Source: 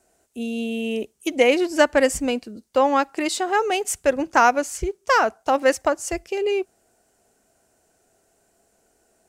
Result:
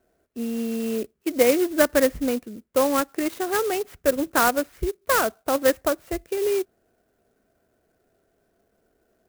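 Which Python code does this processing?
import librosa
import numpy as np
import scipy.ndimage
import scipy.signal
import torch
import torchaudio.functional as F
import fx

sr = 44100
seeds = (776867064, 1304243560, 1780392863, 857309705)

y = scipy.signal.sosfilt(scipy.signal.butter(2, 2100.0, 'lowpass', fs=sr, output='sos'), x)
y = fx.peak_eq(y, sr, hz=850.0, db=-9.5, octaves=0.48)
y = fx.clock_jitter(y, sr, seeds[0], jitter_ms=0.064)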